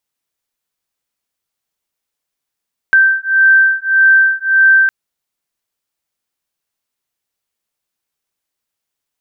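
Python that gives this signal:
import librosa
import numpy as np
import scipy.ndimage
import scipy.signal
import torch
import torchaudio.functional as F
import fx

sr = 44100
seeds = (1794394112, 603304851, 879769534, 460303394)

y = fx.two_tone_beats(sr, length_s=1.96, hz=1560.0, beat_hz=1.7, level_db=-10.5)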